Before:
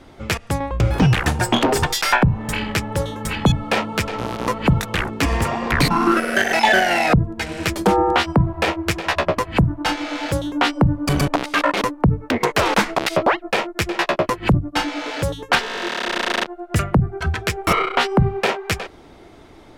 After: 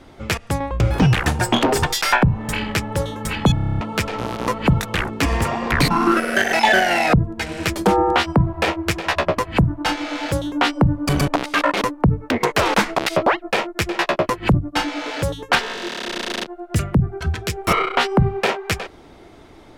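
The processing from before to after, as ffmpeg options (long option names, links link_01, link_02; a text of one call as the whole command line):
ffmpeg -i in.wav -filter_complex "[0:a]asettb=1/sr,asplit=3[link_01][link_02][link_03];[link_01]atrim=end=15.734[link_04];[link_02]atrim=start=15.73:end=17.68,asetpts=PTS-STARTPTS,afade=type=in:duration=0.004:curve=qsin,afade=type=out:start_time=1.946:duration=0.004:curve=qsin,acrossover=split=460|3000[link_05][link_06][link_07];[link_06]acompressor=threshold=-35dB:ratio=2:attack=3.2:release=140:knee=2.83:detection=peak[link_08];[link_05][link_08][link_07]amix=inputs=3:normalize=0[link_09];[link_03]atrim=start=17.676[link_10];[link_04][link_09]acrossfade=duration=0.004:curve1=hsin:curve2=qsin[link_11];[link_11][link_10]acrossfade=duration=0.004:curve1=qsin:curve2=hsin,asplit=10[link_12][link_13][link_14][link_15][link_16][link_17][link_18][link_19][link_20][link_21];[link_12]atrim=end=3.572[link_22];[link_13]atrim=start=3.538:end=3.572[link_23];[link_14]atrim=start=3.538:end=3.572[link_24];[link_15]atrim=start=3.538:end=3.572[link_25];[link_16]atrim=start=3.538:end=3.572[link_26];[link_17]atrim=start=3.538:end=3.572[link_27];[link_18]atrim=start=3.538:end=3.572[link_28];[link_19]atrim=start=3.538:end=3.572[link_29];[link_20]atrim=start=3.538:end=3.572[link_30];[link_21]atrim=start=3.808[link_31];[link_22][link_23]acrossfade=duration=0.004:curve1=hsin:curve2=hsin[link_32];[link_32][link_24]acrossfade=duration=0.004:curve1=hsin:curve2=hsin[link_33];[link_33][link_25]acrossfade=duration=0.004:curve1=hsin:curve2=hsin[link_34];[link_34][link_26]acrossfade=duration=0.004:curve1=hsin:curve2=hsin[link_35];[link_35][link_27]acrossfade=duration=0.004:curve1=hsin:curve2=hsin[link_36];[link_36][link_28]acrossfade=duration=0.004:curve1=hsin:curve2=hsin[link_37];[link_37][link_29]acrossfade=duration=0.004:curve1=hsin:curve2=hsin[link_38];[link_38][link_30]acrossfade=duration=0.004:curve1=hsin:curve2=hsin[link_39];[link_39][link_31]acrossfade=duration=0.004:curve1=hsin:curve2=hsin" out.wav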